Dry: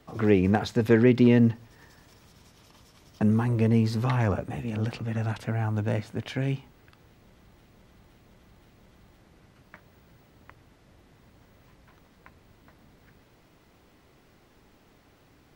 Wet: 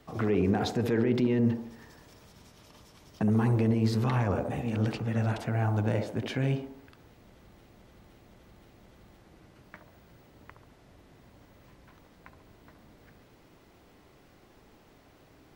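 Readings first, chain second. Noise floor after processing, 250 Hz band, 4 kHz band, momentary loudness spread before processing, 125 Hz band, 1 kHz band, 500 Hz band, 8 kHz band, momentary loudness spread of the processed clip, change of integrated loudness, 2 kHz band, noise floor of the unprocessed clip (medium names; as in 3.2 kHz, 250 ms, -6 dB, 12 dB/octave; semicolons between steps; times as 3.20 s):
-59 dBFS, -4.0 dB, -1.0 dB, 12 LU, -2.5 dB, -1.0 dB, -4.0 dB, no reading, 7 LU, -3.5 dB, -4.0 dB, -60 dBFS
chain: peak limiter -18.5 dBFS, peak gain reduction 11 dB; feedback echo behind a band-pass 69 ms, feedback 50%, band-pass 480 Hz, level -3 dB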